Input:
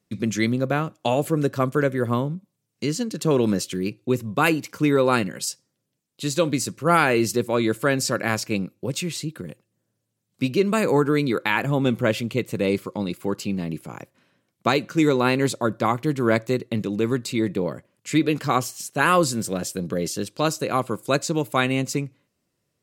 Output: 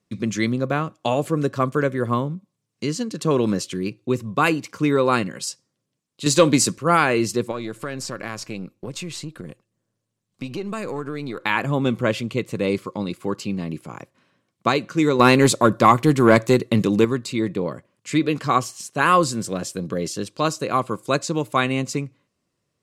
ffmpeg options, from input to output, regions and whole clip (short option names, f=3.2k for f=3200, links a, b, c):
-filter_complex "[0:a]asettb=1/sr,asplit=3[a][b][c];[a]atrim=end=6.264[d];[b]atrim=start=6.26:end=6.78,asetpts=PTS-STARTPTS,afade=t=in:d=0.004:c=qsin,afade=t=out:st=0.516:d=0.004:c=qsin,highpass=120,highshelf=f=6.2k:g=4.5,acontrast=89[e];[c]atrim=start=6.776[f];[d][e]acrossfade=d=0.004:c1=hsin:c2=qsin[g];[g][f]acrossfade=d=0.004:c1=qsin:c2=hsin,asettb=1/sr,asplit=3[h][i][j];[h]atrim=end=7.514[k];[i]atrim=start=7.51:end=11.44,asetpts=PTS-STARTPTS,afade=t=in:d=0.004:c=qsin,afade=t=out:st=3.926:d=0.004:c=qsin,aeval=exprs='if(lt(val(0),0),0.708*val(0),val(0))':c=same,acompressor=threshold=-27dB:ratio=3:attack=3.2:release=140:knee=1:detection=peak[l];[j]atrim=start=11.436[m];[k][l]acrossfade=d=0.004:c1=hsin:c2=qsin[n];[n][m]acrossfade=d=0.004:c1=qsin:c2=hsin,asettb=1/sr,asplit=3[o][p][q];[o]atrim=end=15.194[r];[p]atrim=start=15.19:end=17.05,asetpts=PTS-STARTPTS,afade=t=in:d=0.004:c=qsin,afade=t=out:st=1.856:d=0.004:c=qsin,highshelf=f=10k:g=11,acontrast=83[s];[q]atrim=start=17.046[t];[r][s]acrossfade=d=0.004:c1=hsin:c2=qsin[u];[u][t]acrossfade=d=0.004:c1=qsin:c2=hsin,lowpass=9.6k,equalizer=f=1.1k:w=7.1:g=6"